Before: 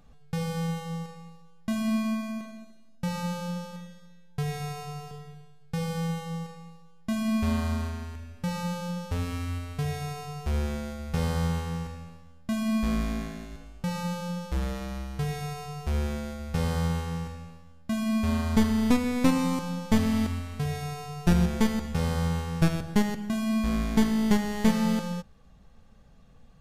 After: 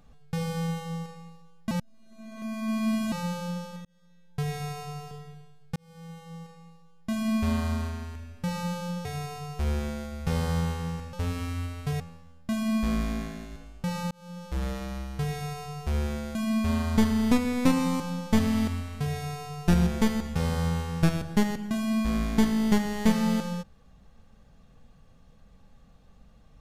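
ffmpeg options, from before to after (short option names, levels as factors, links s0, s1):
-filter_complex "[0:a]asplit=10[s0][s1][s2][s3][s4][s5][s6][s7][s8][s9];[s0]atrim=end=1.712[s10];[s1]atrim=start=1.708:end=3.122,asetpts=PTS-STARTPTS,areverse[s11];[s2]atrim=start=3.118:end=3.85,asetpts=PTS-STARTPTS,afade=t=out:st=0.728:d=0.004:c=hsin[s12];[s3]atrim=start=3.85:end=5.76,asetpts=PTS-STARTPTS,afade=t=in:d=0.54,afade=t=out:st=1.906:d=0.004:c=hsin[s13];[s4]atrim=start=5.76:end=9.052,asetpts=PTS-STARTPTS,afade=t=in:d=1.51[s14];[s5]atrim=start=9.918:end=12.002[s15];[s6]atrim=start=9.048:end=9.922[s16];[s7]atrim=start=11.998:end=14.11,asetpts=PTS-STARTPTS,afade=t=out:st=2.108:d=0.004:c=hsin[s17];[s8]atrim=start=14.11:end=16.352,asetpts=PTS-STARTPTS,afade=t=in:d=0.56[s18];[s9]atrim=start=17.938[s19];[s10][s11]acrossfade=d=0.004:c1=hsin:c2=hsin[s20];[s12][s13][s14]concat=n=3:v=0:a=1[s21];[s20][s21]acrossfade=d=0.004:c1=hsin:c2=hsin[s22];[s22][s15]acrossfade=d=0.004:c1=hsin:c2=hsin[s23];[s23][s16]acrossfade=d=0.004:c1=hsin:c2=hsin[s24];[s17][s18]concat=n=2:v=0:a=1[s25];[s24][s25]acrossfade=d=0.004:c1=hsin:c2=hsin[s26];[s26][s19]acrossfade=d=0.004:c1=hsin:c2=hsin"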